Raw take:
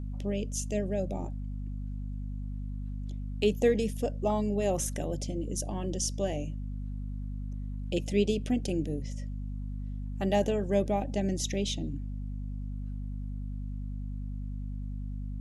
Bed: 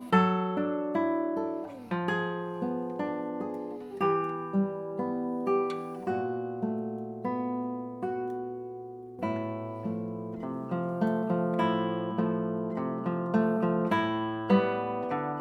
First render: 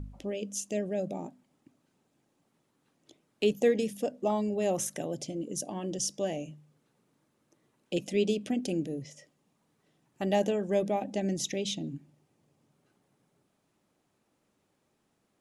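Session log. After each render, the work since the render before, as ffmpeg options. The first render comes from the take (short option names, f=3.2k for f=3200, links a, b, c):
-af "bandreject=f=50:t=h:w=4,bandreject=f=100:t=h:w=4,bandreject=f=150:t=h:w=4,bandreject=f=200:t=h:w=4,bandreject=f=250:t=h:w=4"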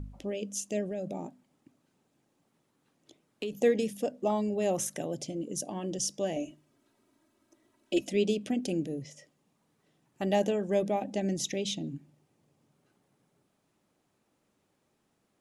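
-filter_complex "[0:a]asettb=1/sr,asplit=3[a][b][c];[a]atrim=end=0.904[d];[b]atrim=start=0.9:end=3.53,asetpts=PTS-STARTPTS,afade=t=in:d=0.004:c=qsin,afade=t=out:st=2.626:d=0.004:c=qsin,acompressor=threshold=-31dB:ratio=6:attack=3.2:release=140:knee=1:detection=peak[e];[c]atrim=start=3.526[f];[d][e]acrossfade=d=0.004:c1=hsin:c2=qsin[g];[g][f]acrossfade=d=0.004:c1=qsin:c2=hsin,asettb=1/sr,asplit=3[h][i][j];[h]atrim=end=6.364[k];[i]atrim=start=6.36:end=8.09,asetpts=PTS-STARTPTS,afade=t=in:d=0.004:c=qsin,afade=t=out:st=1.726:d=0.004:c=qsin,aecho=1:1:3.1:0.87,atrim=end_sample=76293[l];[j]atrim=start=8.086[m];[k][l]acrossfade=d=0.004:c1=hsin:c2=qsin[n];[n][m]acrossfade=d=0.004:c1=qsin:c2=hsin"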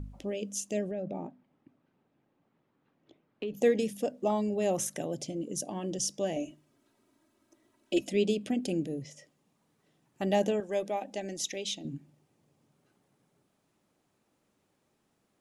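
-filter_complex "[0:a]asettb=1/sr,asplit=3[a][b][c];[a]atrim=end=0.914[d];[b]atrim=start=0.91:end=3.54,asetpts=PTS-STARTPTS,afade=t=in:d=0.004:c=qsin,afade=t=out:st=2.626:d=0.004:c=qsin,lowpass=2.5k[e];[c]atrim=start=3.536[f];[d][e]acrossfade=d=0.004:c1=hsin:c2=qsin[g];[g][f]acrossfade=d=0.004:c1=qsin:c2=hsin,asettb=1/sr,asplit=3[h][i][j];[h]atrim=end=8.034[k];[i]atrim=start=8.03:end=9.04,asetpts=PTS-STARTPTS,afade=t=in:d=0.004:c=qsin,afade=t=out:st=1.006:d=0.004:c=qsin,bandreject=f=5.9k:w=12[l];[j]atrim=start=9.036[m];[k][l]acrossfade=d=0.004:c1=hsin:c2=qsin[n];[n][m]acrossfade=d=0.004:c1=qsin:c2=hsin,asettb=1/sr,asplit=3[o][p][q];[o]atrim=end=10.604[r];[p]atrim=start=10.6:end=11.85,asetpts=PTS-STARTPTS,afade=t=in:d=0.004:c=qsin,afade=t=out:st=1.246:d=0.004:c=qsin,equalizer=f=120:t=o:w=2.5:g=-15[s];[q]atrim=start=11.846[t];[r][s]acrossfade=d=0.004:c1=hsin:c2=qsin[u];[u][t]acrossfade=d=0.004:c1=qsin:c2=hsin"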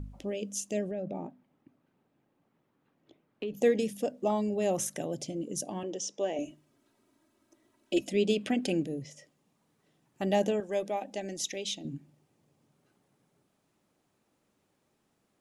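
-filter_complex "[0:a]asettb=1/sr,asplit=3[a][b][c];[a]atrim=end=5.834[d];[b]atrim=start=5.83:end=6.39,asetpts=PTS-STARTPTS,afade=t=in:d=0.004:c=qsin,afade=t=out:st=0.556:d=0.004:c=qsin,highpass=330,equalizer=f=430:t=q:w=4:g=5,equalizer=f=910:t=q:w=4:g=4,equalizer=f=4.6k:t=q:w=4:g=-10,lowpass=f=6.5k:w=0.5412,lowpass=f=6.5k:w=1.3066[e];[c]atrim=start=6.386[f];[d][e]acrossfade=d=0.004:c1=hsin:c2=qsin[g];[g][f]acrossfade=d=0.004:c1=qsin:c2=hsin,asplit=3[h][i][j];[h]afade=t=out:st=8.29:d=0.02[k];[i]equalizer=f=1.6k:t=o:w=2.5:g=9.5,afade=t=in:st=8.29:d=0.02,afade=t=out:st=8.82:d=0.02[l];[j]afade=t=in:st=8.82:d=0.02[m];[k][l][m]amix=inputs=3:normalize=0"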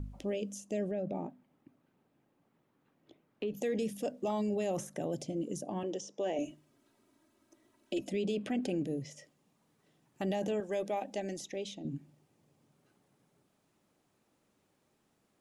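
-filter_complex "[0:a]acrossover=split=1500[a][b];[a]alimiter=level_in=2.5dB:limit=-24dB:level=0:latency=1:release=13,volume=-2.5dB[c];[b]acompressor=threshold=-46dB:ratio=6[d];[c][d]amix=inputs=2:normalize=0"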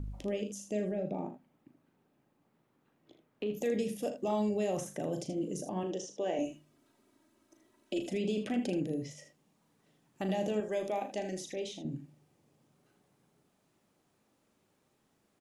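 -af "aecho=1:1:38|79:0.376|0.316"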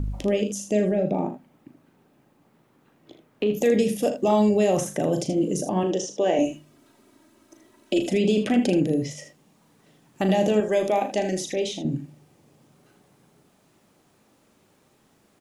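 -af "volume=12dB"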